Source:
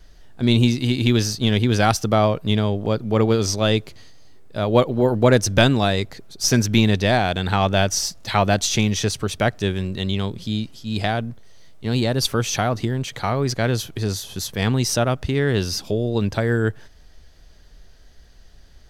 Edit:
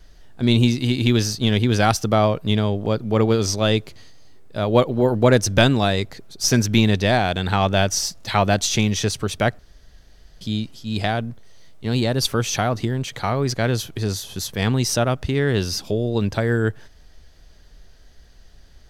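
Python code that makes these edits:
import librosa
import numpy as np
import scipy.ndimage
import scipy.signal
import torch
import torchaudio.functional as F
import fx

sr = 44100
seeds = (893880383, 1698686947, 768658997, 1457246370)

y = fx.edit(x, sr, fx.room_tone_fill(start_s=9.59, length_s=0.82), tone=tone)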